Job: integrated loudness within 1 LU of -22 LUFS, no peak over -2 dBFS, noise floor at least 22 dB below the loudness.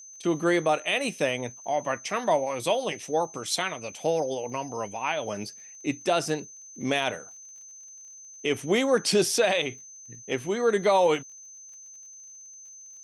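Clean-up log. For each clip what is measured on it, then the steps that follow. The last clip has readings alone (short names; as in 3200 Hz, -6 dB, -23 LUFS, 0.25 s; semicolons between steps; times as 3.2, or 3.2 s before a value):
ticks 31/s; steady tone 6200 Hz; tone level -44 dBFS; loudness -27.0 LUFS; peak -12.5 dBFS; loudness target -22.0 LUFS
-> de-click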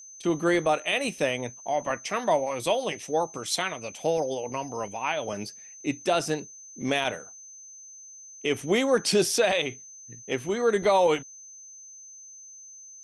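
ticks 0/s; steady tone 6200 Hz; tone level -44 dBFS
-> notch 6200 Hz, Q 30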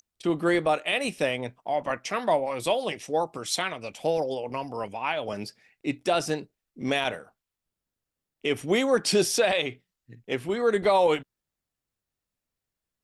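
steady tone none; loudness -27.0 LUFS; peak -12.5 dBFS; loudness target -22.0 LUFS
-> gain +5 dB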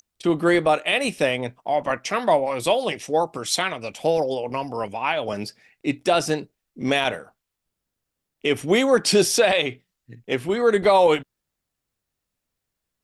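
loudness -22.0 LUFS; peak -7.5 dBFS; noise floor -82 dBFS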